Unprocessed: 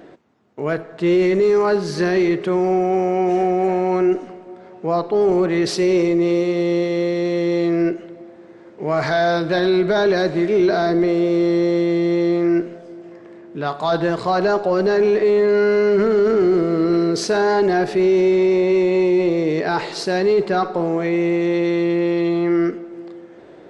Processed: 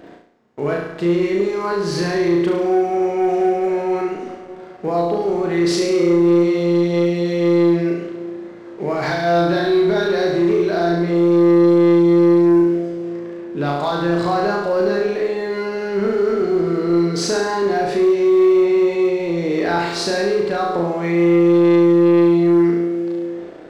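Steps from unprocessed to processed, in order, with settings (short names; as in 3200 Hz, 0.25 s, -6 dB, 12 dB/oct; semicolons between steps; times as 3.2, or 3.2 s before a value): compressor, threshold -20 dBFS, peak gain reduction 7 dB; flutter echo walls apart 6 m, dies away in 0.83 s; sample leveller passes 1; gain -2 dB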